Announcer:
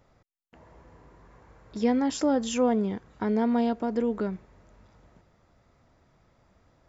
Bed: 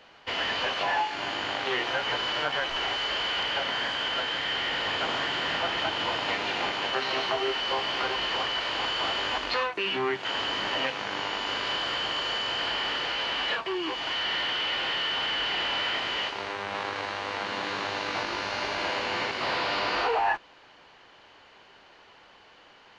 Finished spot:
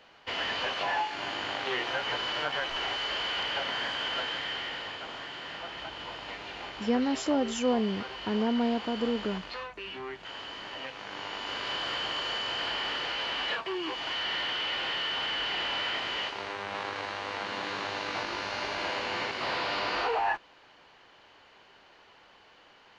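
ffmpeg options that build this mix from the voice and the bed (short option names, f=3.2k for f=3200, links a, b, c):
-filter_complex "[0:a]adelay=5050,volume=-3dB[a];[1:a]volume=5.5dB,afade=t=out:st=4.23:d=0.78:silence=0.375837,afade=t=in:st=10.8:d=1.1:silence=0.375837[b];[a][b]amix=inputs=2:normalize=0"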